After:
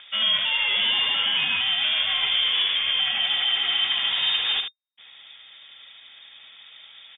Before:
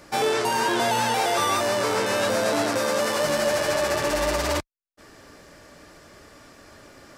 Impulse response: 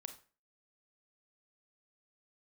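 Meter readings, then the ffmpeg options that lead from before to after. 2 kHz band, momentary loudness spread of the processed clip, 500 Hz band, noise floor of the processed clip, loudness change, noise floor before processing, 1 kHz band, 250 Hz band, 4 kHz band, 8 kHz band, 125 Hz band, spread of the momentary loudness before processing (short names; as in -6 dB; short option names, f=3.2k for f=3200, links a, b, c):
+1.5 dB, 1 LU, -24.5 dB, -49 dBFS, +2.5 dB, -53 dBFS, -12.5 dB, under -15 dB, +12.0 dB, under -40 dB, under -15 dB, 2 LU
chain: -af "lowshelf=f=350:g=6.5,acompressor=mode=upward:threshold=-41dB:ratio=2.5,acrusher=bits=5:mode=log:mix=0:aa=0.000001,aecho=1:1:75:0.447,lowpass=f=3.1k:t=q:w=0.5098,lowpass=f=3.1k:t=q:w=0.6013,lowpass=f=3.1k:t=q:w=0.9,lowpass=f=3.1k:t=q:w=2.563,afreqshift=-3700,volume=-2.5dB"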